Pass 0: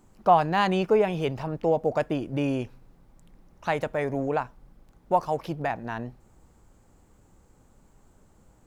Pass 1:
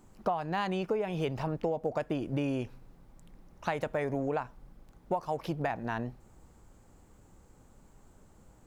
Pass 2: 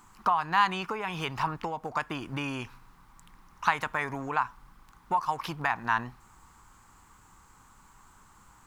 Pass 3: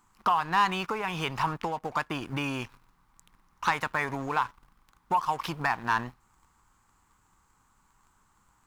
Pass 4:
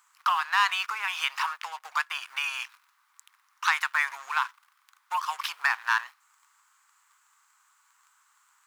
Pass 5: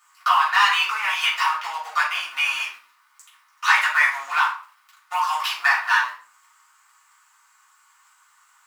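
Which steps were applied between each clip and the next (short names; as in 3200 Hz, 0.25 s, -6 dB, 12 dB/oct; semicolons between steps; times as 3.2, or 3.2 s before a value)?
compressor 16:1, threshold -27 dBFS, peak gain reduction 15 dB
resonant low shelf 780 Hz -10 dB, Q 3; gain +7.5 dB
sample leveller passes 2; gain -5.5 dB
HPF 1200 Hz 24 dB/oct; gain +5.5 dB
shoebox room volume 360 m³, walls furnished, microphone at 6.4 m; gain -2 dB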